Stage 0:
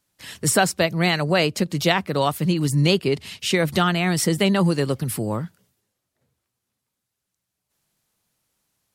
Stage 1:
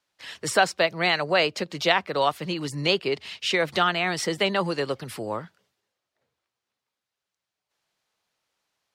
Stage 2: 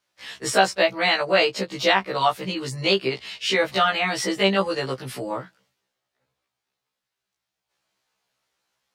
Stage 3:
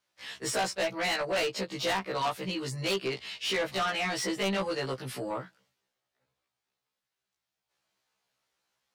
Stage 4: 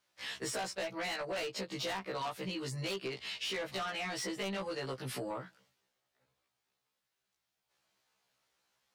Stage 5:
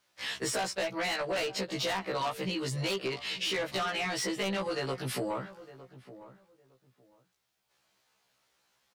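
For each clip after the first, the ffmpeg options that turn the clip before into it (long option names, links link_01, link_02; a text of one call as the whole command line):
ffmpeg -i in.wav -filter_complex "[0:a]acrossover=split=390 5800:gain=0.2 1 0.158[link_01][link_02][link_03];[link_01][link_02][link_03]amix=inputs=3:normalize=0" out.wav
ffmpeg -i in.wav -af "afftfilt=real='re*1.73*eq(mod(b,3),0)':imag='im*1.73*eq(mod(b,3),0)':win_size=2048:overlap=0.75,volume=4.5dB" out.wav
ffmpeg -i in.wav -af "asoftclip=type=tanh:threshold=-21dB,volume=-4dB" out.wav
ffmpeg -i in.wav -af "acompressor=threshold=-38dB:ratio=6,volume=1.5dB" out.wav
ffmpeg -i in.wav -filter_complex "[0:a]asplit=2[link_01][link_02];[link_02]adelay=909,lowpass=frequency=1200:poles=1,volume=-15.5dB,asplit=2[link_03][link_04];[link_04]adelay=909,lowpass=frequency=1200:poles=1,volume=0.21[link_05];[link_01][link_03][link_05]amix=inputs=3:normalize=0,volume=5.5dB" out.wav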